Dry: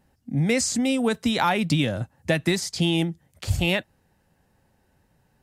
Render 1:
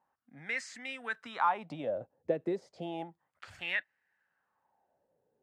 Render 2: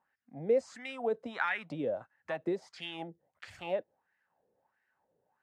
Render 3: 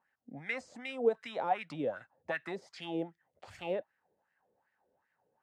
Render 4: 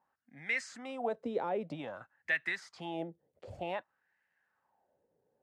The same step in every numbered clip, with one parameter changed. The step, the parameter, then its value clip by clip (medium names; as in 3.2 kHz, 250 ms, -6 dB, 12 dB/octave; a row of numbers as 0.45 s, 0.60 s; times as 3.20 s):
wah-wah, rate: 0.32 Hz, 1.5 Hz, 2.6 Hz, 0.53 Hz